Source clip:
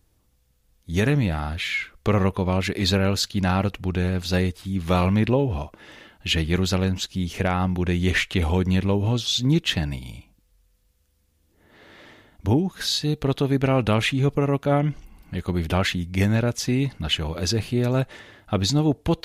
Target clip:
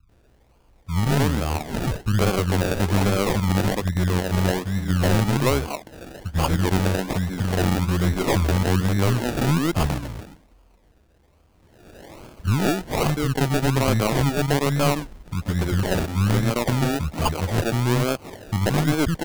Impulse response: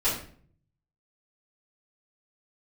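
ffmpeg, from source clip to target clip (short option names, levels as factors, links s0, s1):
-filter_complex "[0:a]highshelf=f=8200:g=10,asplit=2[s0][s1];[s1]acompressor=threshold=0.02:ratio=6,volume=0.75[s2];[s0][s2]amix=inputs=2:normalize=0,acrossover=split=220|4000[s3][s4][s5];[s5]adelay=90[s6];[s4]adelay=130[s7];[s3][s7][s6]amix=inputs=3:normalize=0,acrusher=samples=33:mix=1:aa=0.000001:lfo=1:lforange=19.8:lforate=1.2,aeval=exprs='0.422*(cos(1*acos(clip(val(0)/0.422,-1,1)))-cos(1*PI/2))+0.0841*(cos(4*acos(clip(val(0)/0.422,-1,1)))-cos(4*PI/2))+0.0531*(cos(5*acos(clip(val(0)/0.422,-1,1)))-cos(5*PI/2))':c=same,volume=0.75"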